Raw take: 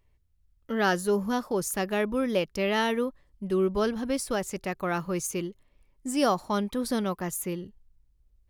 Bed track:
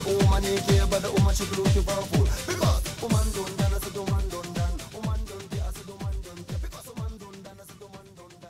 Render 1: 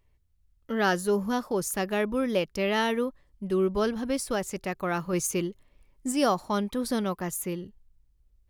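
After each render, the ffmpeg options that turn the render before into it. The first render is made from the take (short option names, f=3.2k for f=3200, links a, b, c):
-filter_complex "[0:a]asplit=3[a][b][c];[a]atrim=end=5.132[d];[b]atrim=start=5.128:end=6.122,asetpts=PTS-STARTPTS,volume=3dB[e];[c]atrim=start=6.118[f];[d][e]acrossfade=d=0.004:c1=hsin:c2=hsin[g];[g][f]acrossfade=d=0.004:c1=hsin:c2=hsin"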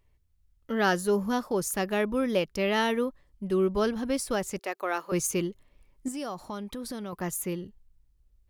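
-filter_complex "[0:a]asettb=1/sr,asplit=3[a][b][c];[a]atrim=end=4.594[d];[b]atrim=start=4.59:end=5.12,asetpts=PTS-STARTPTS,afade=t=in:d=0.004:c=qsin,afade=t=out:st=0.526:d=0.004:c=qsin,highpass=f=350:w=0.5412,highpass=f=350:w=1.3066[e];[c]atrim=start=5.116[f];[d][e]acrossfade=d=0.004:c1=hsin:c2=qsin[g];[g][f]acrossfade=d=0.004:c1=qsin:c2=hsin,asettb=1/sr,asplit=3[h][i][j];[h]atrim=end=6.084[k];[i]atrim=start=6.08:end=7.13,asetpts=PTS-STARTPTS,afade=t=in:d=0.004:c=qsin,afade=t=out:st=1.046:d=0.004:c=qsin,acompressor=threshold=-35dB:ratio=3:attack=3.2:release=140:knee=1:detection=peak[l];[j]atrim=start=7.126[m];[k][l]acrossfade=d=0.004:c1=hsin:c2=qsin[n];[n][m]acrossfade=d=0.004:c1=qsin:c2=hsin"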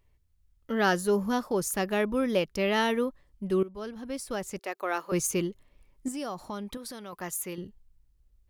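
-filter_complex "[0:a]asettb=1/sr,asplit=3[a][b][c];[a]atrim=end=6.774[d];[b]atrim=start=6.77:end=7.58,asetpts=PTS-STARTPTS,afade=t=in:d=0.004:c=qsin,afade=t=out:st=0.806:d=0.004:c=qsin,lowshelf=f=390:g=-10.5[e];[c]atrim=start=7.576[f];[d][e]acrossfade=d=0.004:c1=hsin:c2=qsin[g];[g][f]acrossfade=d=0.004:c1=qsin:c2=hsin,asplit=2[h][i];[h]atrim=end=3.63,asetpts=PTS-STARTPTS,afade=t=out:st=3.626:d=0.004:c=hsin:silence=0.125893[j];[i]atrim=start=3.63,asetpts=PTS-STARTPTS,afade=t=in:d=1.35:silence=0.125893[k];[j][k]concat=n=2:v=0:a=1"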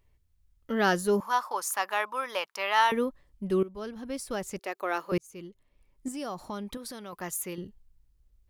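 -filter_complex "[0:a]asettb=1/sr,asplit=3[a][b][c];[a]atrim=end=1.204[d];[b]atrim=start=1.2:end=2.92,asetpts=PTS-STARTPTS,afade=t=in:d=0.004:c=qsin,afade=t=out:st=1.716:d=0.004:c=qsin,highpass=f=980:t=q:w=2.9[e];[c]atrim=start=2.916[f];[d][e]acrossfade=d=0.004:c1=hsin:c2=qsin[g];[g][f]acrossfade=d=0.004:c1=qsin:c2=hsin,asplit=2[h][i];[h]atrim=end=5.18,asetpts=PTS-STARTPTS,afade=t=out:st=5.176:d=0.004:c=hsin[j];[i]atrim=start=5.18,asetpts=PTS-STARTPTS,afade=t=in:d=1.17[k];[j][k]concat=n=2:v=0:a=1"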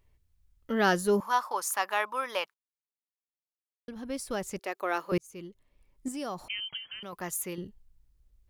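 -filter_complex "[0:a]asettb=1/sr,asplit=3[a][b][c];[a]atrim=end=6.484[d];[b]atrim=start=6.48:end=7.03,asetpts=PTS-STARTPTS,afade=t=in:d=0.004:c=qsin,afade=t=out:st=0.546:d=0.004:c=qsin,lowpass=f=2.8k:t=q:w=0.5098,lowpass=f=2.8k:t=q:w=0.6013,lowpass=f=2.8k:t=q:w=0.9,lowpass=f=2.8k:t=q:w=2.563,afreqshift=-3300[e];[c]atrim=start=7.026[f];[d][e]acrossfade=d=0.004:c1=hsin:c2=qsin[g];[g][f]acrossfade=d=0.004:c1=qsin:c2=hsin,asplit=3[h][i][j];[h]atrim=end=2.54,asetpts=PTS-STARTPTS,afade=t=out:st=2.536:d=0.004:c=hsin[k];[i]atrim=start=2.54:end=3.88,asetpts=PTS-STARTPTS,volume=0[l];[j]atrim=start=3.88,asetpts=PTS-STARTPTS,afade=t=in:d=0.004:c=hsin[m];[k][l][m]concat=n=3:v=0:a=1"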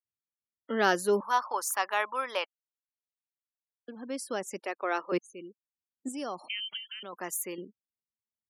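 -af "afftfilt=real='re*gte(hypot(re,im),0.00398)':imag='im*gte(hypot(re,im),0.00398)':win_size=1024:overlap=0.75,highpass=f=230:w=0.5412,highpass=f=230:w=1.3066"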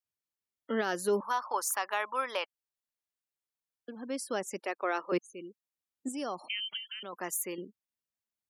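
-af "alimiter=limit=-20dB:level=0:latency=1:release=155"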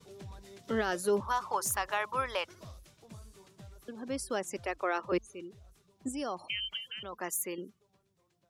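-filter_complex "[1:a]volume=-26.5dB[a];[0:a][a]amix=inputs=2:normalize=0"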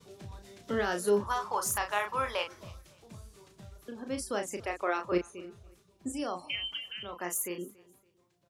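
-filter_complex "[0:a]asplit=2[a][b];[b]adelay=34,volume=-6dB[c];[a][c]amix=inputs=2:normalize=0,aecho=1:1:282|564:0.0708|0.0212"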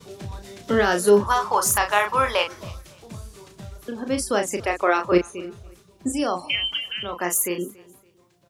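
-af "volume=11dB"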